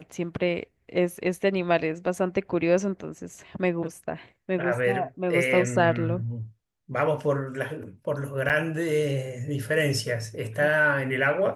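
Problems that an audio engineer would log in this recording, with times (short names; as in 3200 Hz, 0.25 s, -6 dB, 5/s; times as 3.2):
8.49–8.5 gap 7.6 ms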